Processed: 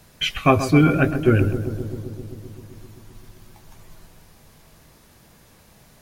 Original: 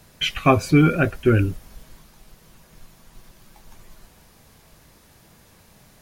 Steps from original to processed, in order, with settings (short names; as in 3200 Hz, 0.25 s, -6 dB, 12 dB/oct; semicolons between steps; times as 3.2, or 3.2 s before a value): darkening echo 0.13 s, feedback 80%, low-pass 1400 Hz, level -10 dB